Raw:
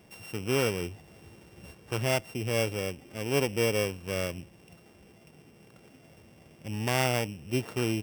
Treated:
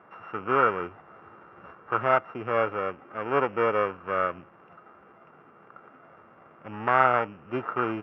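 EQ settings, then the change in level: high-pass 720 Hz 6 dB/octave; resonant low-pass 1.3 kHz, resonance Q 6.9; distance through air 220 m; +7.0 dB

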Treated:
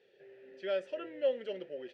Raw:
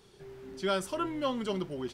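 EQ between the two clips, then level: vowel filter e; distance through air 85 m; bass shelf 480 Hz -4.5 dB; +8.5 dB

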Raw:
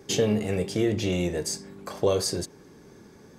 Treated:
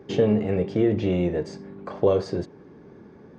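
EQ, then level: tape spacing loss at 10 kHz 39 dB; bass shelf 67 Hz -10.5 dB; +5.5 dB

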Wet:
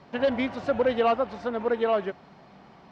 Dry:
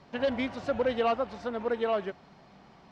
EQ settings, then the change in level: bass shelf 68 Hz -8 dB; treble shelf 4.7 kHz -8 dB; +4.5 dB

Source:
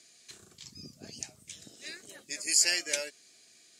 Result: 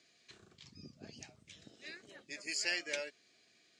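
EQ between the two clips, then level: low-pass 3.6 kHz 12 dB/octave; -3.5 dB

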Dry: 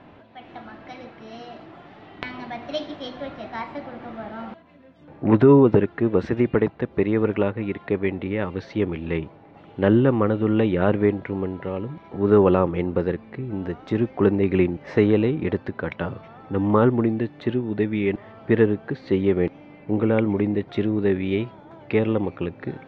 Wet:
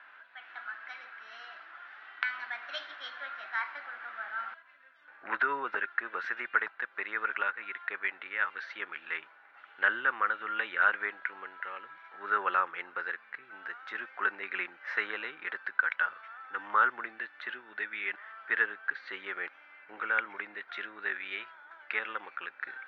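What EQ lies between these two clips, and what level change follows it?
resonant high-pass 1.5 kHz, resonance Q 5.4; distance through air 85 m; -4.5 dB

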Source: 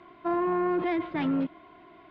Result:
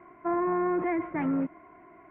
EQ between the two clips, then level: elliptic low-pass 2.2 kHz, stop band 70 dB; 0.0 dB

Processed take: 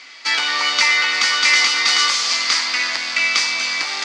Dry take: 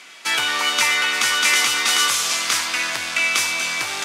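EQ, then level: cabinet simulation 220–6500 Hz, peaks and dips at 260 Hz +7 dB, 530 Hz +5 dB, 840 Hz +6 dB, 1.2 kHz +6 dB, 2 kHz +9 dB, 4.6 kHz +10 dB; bass shelf 360 Hz +6 dB; treble shelf 2.1 kHz +9 dB; -8.0 dB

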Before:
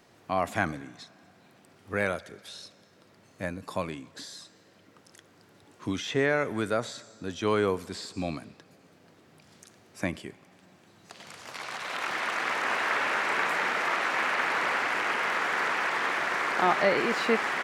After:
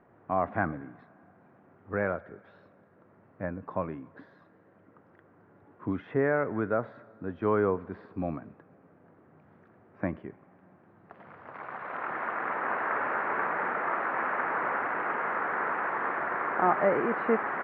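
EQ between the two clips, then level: low-pass 1.6 kHz 24 dB/octave; 0.0 dB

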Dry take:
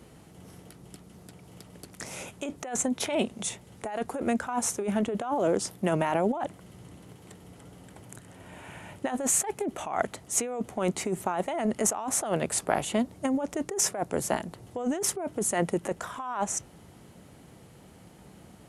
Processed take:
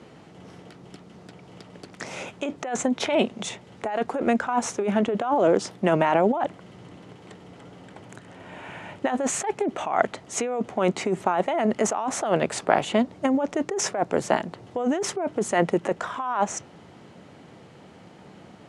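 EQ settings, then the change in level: high-pass 89 Hz; distance through air 120 m; bass shelf 190 Hz -7.5 dB; +7.5 dB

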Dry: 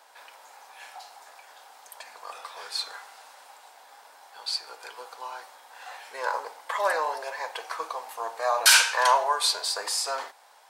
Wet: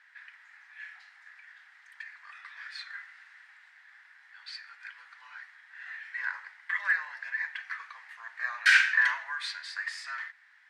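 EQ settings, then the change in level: ladder band-pass 2 kHz, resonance 75%; peaking EQ 1.5 kHz +10 dB 1.4 oct; treble shelf 3 kHz +9 dB; -3.5 dB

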